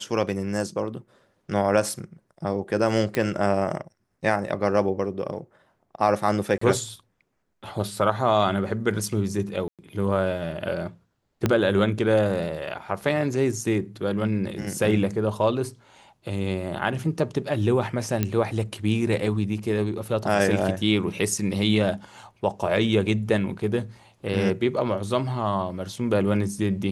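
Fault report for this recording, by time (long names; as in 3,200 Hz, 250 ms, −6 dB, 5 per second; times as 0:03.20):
0:03.15: click −12 dBFS
0:06.58–0:06.61: drop-out 34 ms
0:09.68–0:09.79: drop-out 107 ms
0:11.46: click −8 dBFS
0:18.23: click −9 dBFS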